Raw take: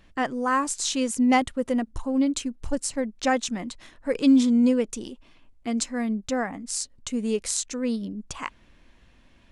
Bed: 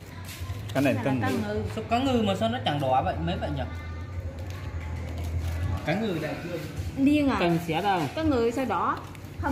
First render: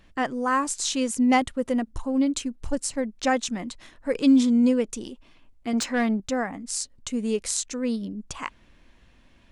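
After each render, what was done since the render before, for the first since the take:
0:05.73–0:06.20: mid-hump overdrive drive 19 dB, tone 2,700 Hz, clips at −13 dBFS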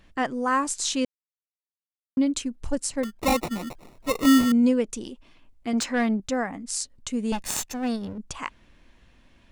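0:01.05–0:02.17: silence
0:03.03–0:04.52: sample-rate reduction 1,600 Hz
0:07.32–0:08.18: lower of the sound and its delayed copy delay 1.1 ms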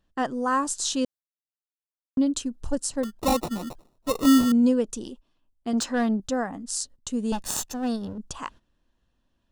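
noise gate −43 dBFS, range −15 dB
parametric band 2,200 Hz −15 dB 0.34 octaves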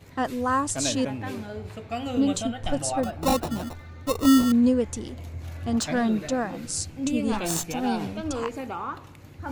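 mix in bed −6.5 dB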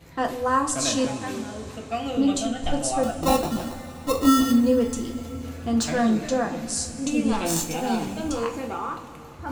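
coupled-rooms reverb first 0.3 s, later 3.8 s, from −18 dB, DRR 2.5 dB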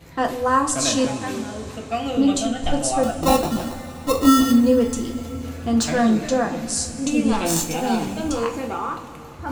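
level +3.5 dB

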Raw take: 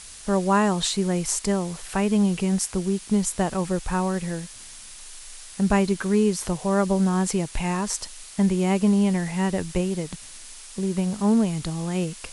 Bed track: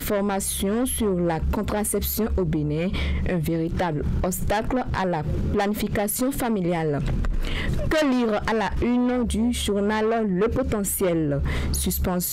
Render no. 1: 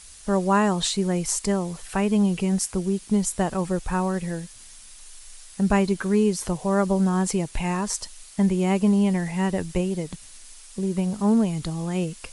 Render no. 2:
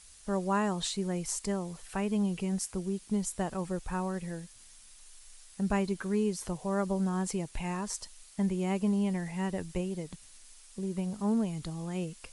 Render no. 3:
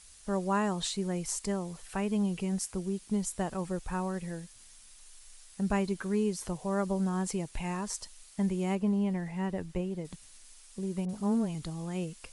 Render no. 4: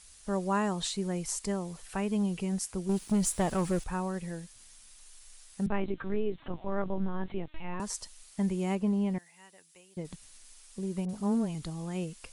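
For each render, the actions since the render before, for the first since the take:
broadband denoise 6 dB, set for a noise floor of −43 dBFS
level −9 dB
0:08.75–0:10.05: high-shelf EQ 3,800 Hz −10.5 dB; 0:11.05–0:11.55: all-pass dispersion highs, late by 41 ms, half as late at 1,200 Hz
0:02.89–0:03.84: leveller curve on the samples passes 2; 0:05.66–0:07.80: linear-prediction vocoder at 8 kHz pitch kept; 0:09.18–0:09.97: first difference

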